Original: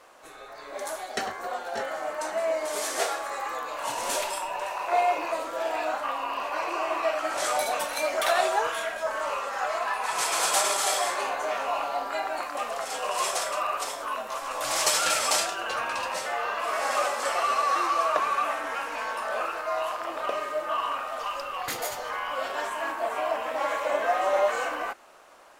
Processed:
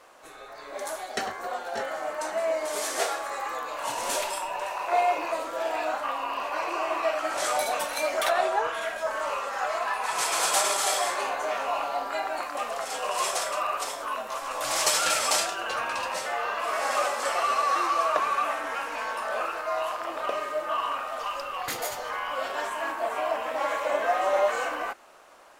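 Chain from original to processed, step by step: 8.28–8.81 s: treble shelf 3 kHz -> 5 kHz -10.5 dB

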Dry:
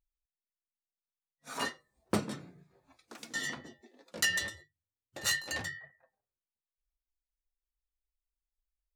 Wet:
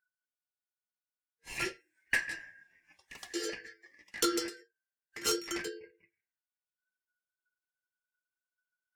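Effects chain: four frequency bands reordered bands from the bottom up 2143; spectral noise reduction 7 dB

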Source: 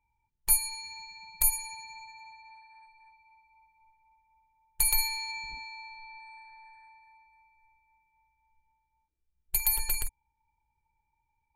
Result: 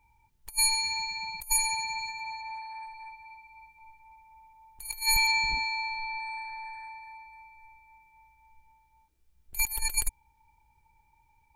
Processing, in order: 1.88–5.27 s: chunks repeated in reverse 106 ms, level -10 dB; compressor with a negative ratio -34 dBFS, ratio -0.5; trim +7 dB

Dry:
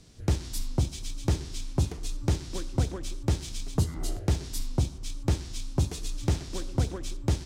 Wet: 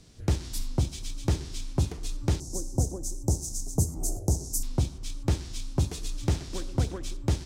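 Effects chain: 2.40–4.63 s: FFT filter 790 Hz 0 dB, 1.7 kHz -24 dB, 3 kHz -30 dB, 6.2 kHz +9 dB

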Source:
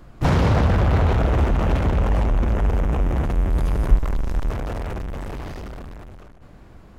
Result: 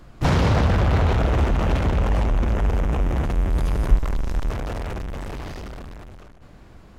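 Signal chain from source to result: peaking EQ 4.9 kHz +4 dB 2.4 oct; trim -1 dB

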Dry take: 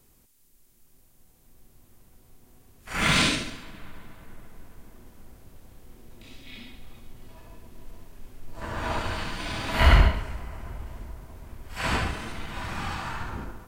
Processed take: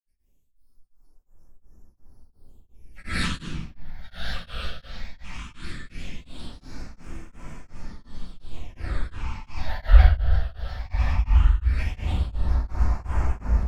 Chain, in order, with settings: peaking EQ 66 Hz +10 dB 0.56 oct; echo that smears into a reverb 1292 ms, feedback 61%, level -3.5 dB; phase shifter stages 8, 0.17 Hz, lowest notch 290–3800 Hz; granulator, grains 20 per s, pitch spread up and down by 3 st; spectral noise reduction 8 dB; simulated room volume 190 m³, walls mixed, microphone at 5.4 m; tremolo of two beating tones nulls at 2.8 Hz; trim -16.5 dB

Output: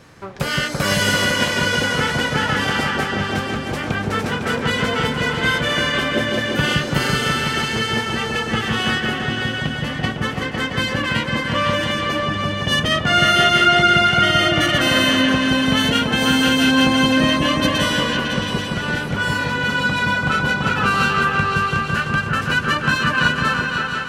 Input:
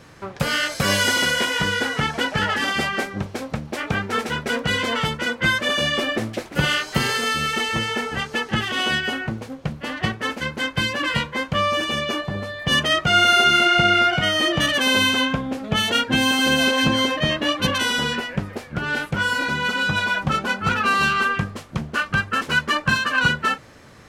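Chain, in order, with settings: delay with an opening low-pass 168 ms, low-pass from 400 Hz, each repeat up 2 oct, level 0 dB

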